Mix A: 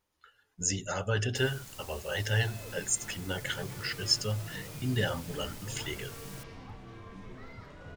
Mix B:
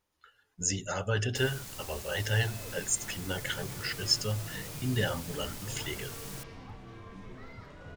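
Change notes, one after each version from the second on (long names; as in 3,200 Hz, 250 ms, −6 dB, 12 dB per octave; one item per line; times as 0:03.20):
first sound +4.5 dB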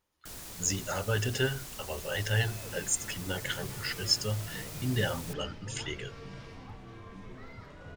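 first sound: entry −1.10 s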